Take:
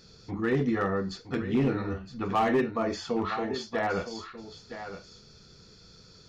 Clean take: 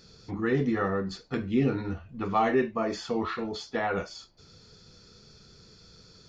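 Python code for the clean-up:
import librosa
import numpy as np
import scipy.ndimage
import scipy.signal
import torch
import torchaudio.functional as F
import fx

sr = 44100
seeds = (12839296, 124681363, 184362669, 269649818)

y = fx.fix_declip(x, sr, threshold_db=-19.0)
y = fx.fix_echo_inverse(y, sr, delay_ms=965, level_db=-11.0)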